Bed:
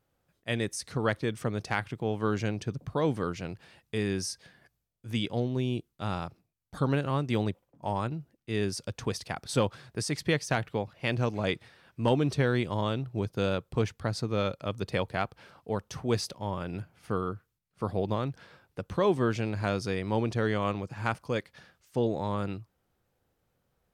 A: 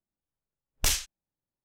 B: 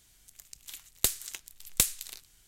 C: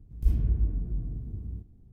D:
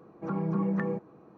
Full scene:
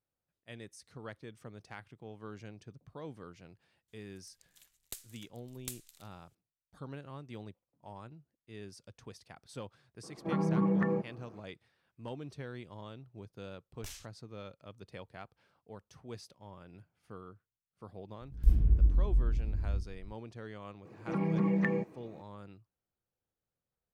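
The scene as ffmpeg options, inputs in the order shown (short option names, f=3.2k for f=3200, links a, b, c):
-filter_complex "[4:a]asplit=2[a][b];[0:a]volume=-17.5dB[c];[1:a]acompressor=threshold=-25dB:ratio=6:attack=3.2:release=140:knee=1:detection=peak[d];[3:a]asubboost=boost=9.5:cutoff=62[e];[b]highshelf=f=1.7k:t=q:w=3:g=6[f];[2:a]atrim=end=2.47,asetpts=PTS-STARTPTS,volume=-18dB,afade=t=in:d=0.004:c=hsin,afade=t=out:st=2.466:d=0.004:c=hsin,adelay=3880[g];[a]atrim=end=1.37,asetpts=PTS-STARTPTS,afade=t=in:d=0.004:c=hsin,afade=t=out:st=1.366:d=0.004:c=hsin,adelay=10030[h];[d]atrim=end=1.64,asetpts=PTS-STARTPTS,volume=-17dB,afade=t=in:d=0.004:c=hsin,afade=t=out:st=1.636:d=0.004:c=hsin,adelay=573300S[i];[e]atrim=end=1.92,asetpts=PTS-STARTPTS,volume=-2.5dB,afade=t=in:d=0.004:c=hsin,afade=t=out:st=1.916:d=0.004:c=hsin,adelay=18210[j];[f]atrim=end=1.37,asetpts=PTS-STARTPTS,volume=-0.5dB,afade=t=in:d=0.004:c=hsin,afade=t=out:st=1.366:d=0.004:c=hsin,adelay=20850[k];[c][g][h][i][j][k]amix=inputs=6:normalize=0"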